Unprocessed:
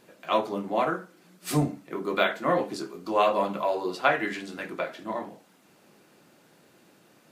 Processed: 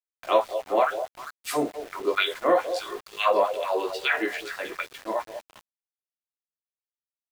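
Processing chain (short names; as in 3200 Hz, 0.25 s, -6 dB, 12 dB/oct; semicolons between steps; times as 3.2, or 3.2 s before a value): LFO high-pass sine 2.3 Hz 380–3800 Hz; delay with a stepping band-pass 0.2 s, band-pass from 540 Hz, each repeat 1.4 oct, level -8 dB; sample gate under -40.5 dBFS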